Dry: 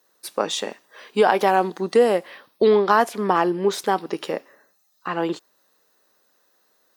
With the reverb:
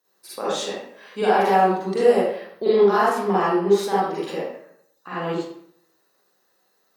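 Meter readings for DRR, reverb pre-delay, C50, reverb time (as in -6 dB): -9.5 dB, 38 ms, -4.0 dB, 0.65 s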